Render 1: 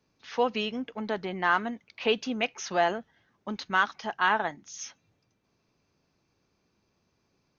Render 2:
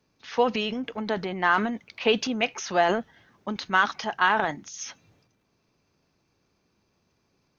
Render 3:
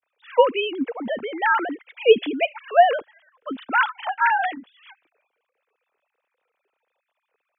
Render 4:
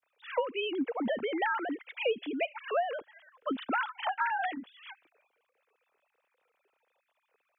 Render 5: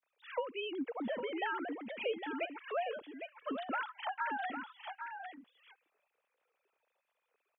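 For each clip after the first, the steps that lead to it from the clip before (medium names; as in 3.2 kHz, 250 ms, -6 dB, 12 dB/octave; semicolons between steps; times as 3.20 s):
transient shaper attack +3 dB, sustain +8 dB; trim +1.5 dB
formants replaced by sine waves; trim +4.5 dB
compression 8:1, threshold -28 dBFS, peak gain reduction 20 dB
delay 806 ms -7.5 dB; trim -6.5 dB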